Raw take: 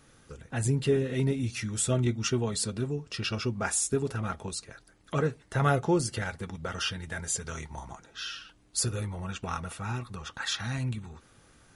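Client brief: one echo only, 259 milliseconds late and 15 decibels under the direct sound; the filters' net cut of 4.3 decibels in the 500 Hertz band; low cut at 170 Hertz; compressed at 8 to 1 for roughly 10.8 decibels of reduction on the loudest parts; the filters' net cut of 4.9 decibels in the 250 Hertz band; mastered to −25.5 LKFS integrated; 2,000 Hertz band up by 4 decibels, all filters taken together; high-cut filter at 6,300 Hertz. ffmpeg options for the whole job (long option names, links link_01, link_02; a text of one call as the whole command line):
ffmpeg -i in.wav -af "highpass=170,lowpass=6300,equalizer=frequency=250:width_type=o:gain=-3.5,equalizer=frequency=500:width_type=o:gain=-4.5,equalizer=frequency=2000:width_type=o:gain=6,acompressor=threshold=-31dB:ratio=8,aecho=1:1:259:0.178,volume=11.5dB" out.wav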